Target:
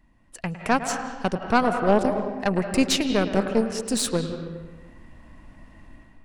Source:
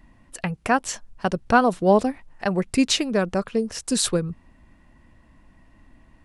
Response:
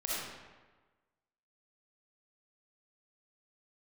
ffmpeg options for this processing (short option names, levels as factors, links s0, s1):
-filter_complex "[0:a]dynaudnorm=f=150:g=5:m=4.47,asplit=2[s0][s1];[1:a]atrim=start_sample=2205,lowpass=3600,adelay=107[s2];[s1][s2]afir=irnorm=-1:irlink=0,volume=0.316[s3];[s0][s3]amix=inputs=2:normalize=0,aeval=exprs='0.944*(cos(1*acos(clip(val(0)/0.944,-1,1)))-cos(1*PI/2))+0.133*(cos(4*acos(clip(val(0)/0.944,-1,1)))-cos(4*PI/2))':c=same,volume=0.398"